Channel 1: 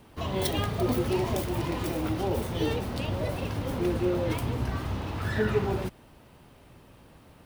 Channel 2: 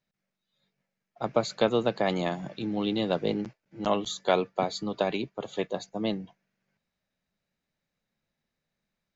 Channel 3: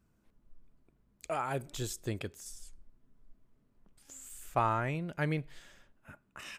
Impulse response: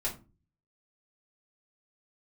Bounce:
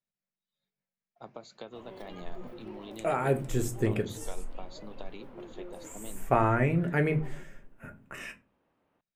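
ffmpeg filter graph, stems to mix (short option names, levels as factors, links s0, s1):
-filter_complex "[0:a]acrossover=split=210 2800:gain=0.2 1 0.158[s0][s1][s2];[s0][s1][s2]amix=inputs=3:normalize=0,adelay=1550,volume=0.133[s3];[1:a]acompressor=threshold=0.0447:ratio=6,volume=0.2,asplit=2[s4][s5];[s5]volume=0.133[s6];[2:a]equalizer=f=125:t=o:w=1:g=4,equalizer=f=250:t=o:w=1:g=5,equalizer=f=500:t=o:w=1:g=5,equalizer=f=1000:t=o:w=1:g=-4,equalizer=f=2000:t=o:w=1:g=6,equalizer=f=4000:t=o:w=1:g=-12,adelay=1750,volume=1.06,asplit=2[s7][s8];[s8]volume=0.531[s9];[3:a]atrim=start_sample=2205[s10];[s6][s9]amix=inputs=2:normalize=0[s11];[s11][s10]afir=irnorm=-1:irlink=0[s12];[s3][s4][s7][s12]amix=inputs=4:normalize=0"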